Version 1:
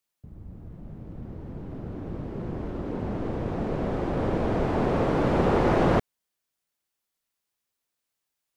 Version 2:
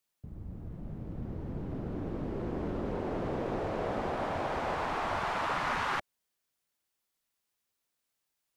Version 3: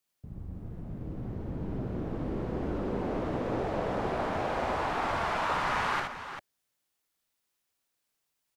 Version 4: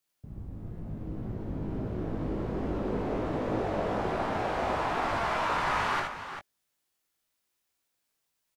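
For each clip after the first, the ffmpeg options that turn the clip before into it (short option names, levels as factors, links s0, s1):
-af "afftfilt=real='re*lt(hypot(re,im),0.178)':imag='im*lt(hypot(re,im),0.178)':win_size=1024:overlap=0.75"
-af "aecho=1:1:60|76|395:0.531|0.531|0.355"
-filter_complex "[0:a]asplit=2[s0][s1];[s1]adelay=19,volume=0.501[s2];[s0][s2]amix=inputs=2:normalize=0"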